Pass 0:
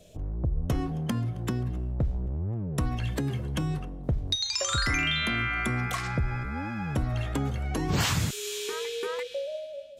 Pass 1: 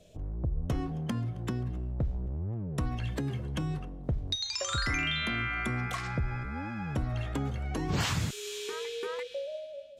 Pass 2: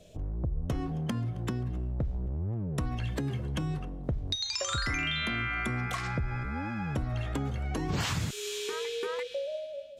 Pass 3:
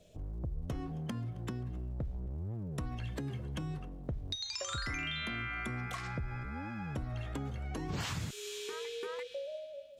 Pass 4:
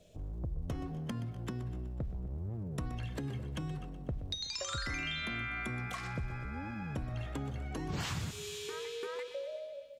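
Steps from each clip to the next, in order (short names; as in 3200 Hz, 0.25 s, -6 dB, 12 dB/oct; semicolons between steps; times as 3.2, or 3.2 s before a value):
high shelf 10000 Hz -9 dB; gain -3.5 dB
compressor 2:1, threshold -33 dBFS, peak gain reduction 5 dB; gain +3 dB
crackle 450/s -61 dBFS; gain -6.5 dB
feedback echo 0.124 s, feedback 58%, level -14 dB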